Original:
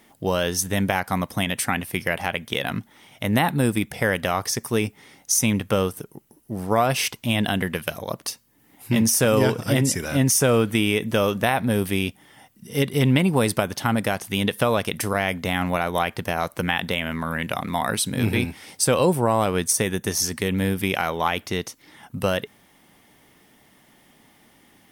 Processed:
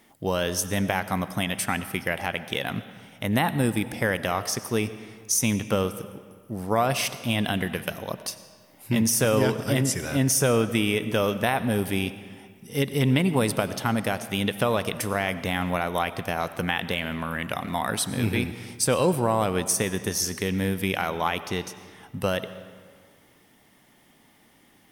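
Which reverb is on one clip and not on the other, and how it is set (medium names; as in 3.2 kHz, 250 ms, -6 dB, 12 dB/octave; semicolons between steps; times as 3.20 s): algorithmic reverb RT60 1.8 s, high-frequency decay 0.75×, pre-delay 55 ms, DRR 13 dB; trim -3 dB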